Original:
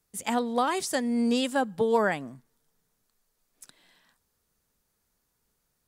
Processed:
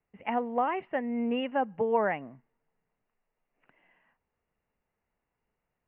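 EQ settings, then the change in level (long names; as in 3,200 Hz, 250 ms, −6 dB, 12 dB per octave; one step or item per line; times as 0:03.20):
Chebyshev low-pass with heavy ripple 2,900 Hz, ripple 6 dB
0.0 dB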